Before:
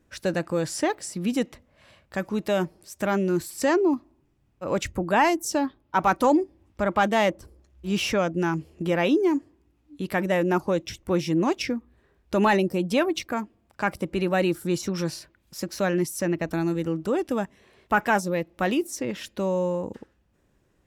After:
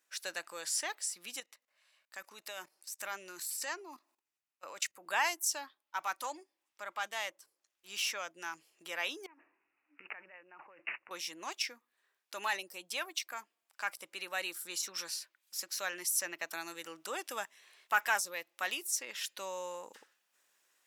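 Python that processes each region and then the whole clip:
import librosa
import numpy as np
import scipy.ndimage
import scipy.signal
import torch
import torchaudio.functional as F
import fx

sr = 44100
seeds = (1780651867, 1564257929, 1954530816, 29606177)

y = fx.chain(x, sr, fx.level_steps(step_db=16),
    fx.notch(hz=3300.0, q=18.0), at=(1.4, 5.06))
y = fx.chain(y, sr, fx.over_compress(threshold_db=-34.0, ratio=-1.0),
    fx.resample_bad(factor=8, down='none', up='filtered'), at=(9.26, 11.11))
y = scipy.signal.sosfilt(scipy.signal.butter(2, 1100.0, 'highpass', fs=sr, output='sos'), y)
y = fx.high_shelf(y, sr, hz=3700.0, db=10.0)
y = fx.rider(y, sr, range_db=10, speed_s=2.0)
y = y * 10.0 ** (-9.0 / 20.0)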